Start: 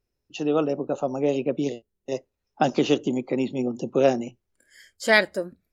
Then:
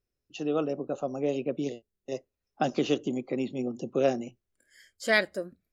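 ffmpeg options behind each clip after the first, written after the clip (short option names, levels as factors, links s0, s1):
-af "bandreject=f=900:w=7.1,volume=0.531"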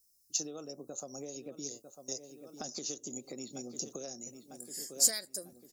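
-filter_complex "[0:a]asplit=2[s0][s1];[s1]adelay=948,lowpass=f=3100:p=1,volume=0.168,asplit=2[s2][s3];[s3]adelay=948,lowpass=f=3100:p=1,volume=0.51,asplit=2[s4][s5];[s5]adelay=948,lowpass=f=3100:p=1,volume=0.51,asplit=2[s6][s7];[s7]adelay=948,lowpass=f=3100:p=1,volume=0.51,asplit=2[s8][s9];[s9]adelay=948,lowpass=f=3100:p=1,volume=0.51[s10];[s0][s2][s4][s6][s8][s10]amix=inputs=6:normalize=0,acompressor=threshold=0.02:ratio=12,aexciter=amount=10.9:drive=9.9:freq=4700,volume=0.473"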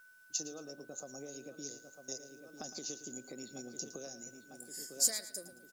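-af "aeval=exprs='val(0)+0.002*sin(2*PI*1500*n/s)':c=same,acrusher=bits=10:mix=0:aa=0.000001,aecho=1:1:111|222|333:0.2|0.0658|0.0217,volume=0.668"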